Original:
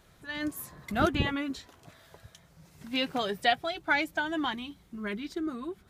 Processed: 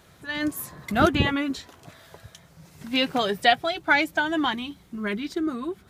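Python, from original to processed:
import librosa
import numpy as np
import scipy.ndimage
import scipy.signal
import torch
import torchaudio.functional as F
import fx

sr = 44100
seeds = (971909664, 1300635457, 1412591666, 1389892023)

y = scipy.signal.sosfilt(scipy.signal.butter(2, 61.0, 'highpass', fs=sr, output='sos'), x)
y = y * librosa.db_to_amplitude(6.5)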